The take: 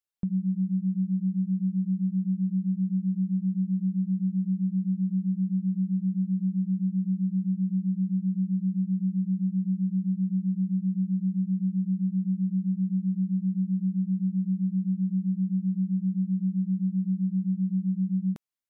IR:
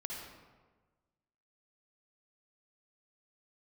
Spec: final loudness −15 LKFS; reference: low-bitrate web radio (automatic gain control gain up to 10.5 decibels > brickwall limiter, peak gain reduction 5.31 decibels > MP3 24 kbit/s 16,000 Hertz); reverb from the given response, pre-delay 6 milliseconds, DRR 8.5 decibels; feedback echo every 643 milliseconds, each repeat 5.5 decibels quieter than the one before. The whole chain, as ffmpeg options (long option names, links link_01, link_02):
-filter_complex "[0:a]aecho=1:1:643|1286|1929|2572|3215|3858|4501:0.531|0.281|0.149|0.079|0.0419|0.0222|0.0118,asplit=2[link_01][link_02];[1:a]atrim=start_sample=2205,adelay=6[link_03];[link_02][link_03]afir=irnorm=-1:irlink=0,volume=-8.5dB[link_04];[link_01][link_04]amix=inputs=2:normalize=0,dynaudnorm=maxgain=10.5dB,alimiter=limit=-14dB:level=0:latency=1,volume=6.5dB" -ar 16000 -c:a libmp3lame -b:a 24k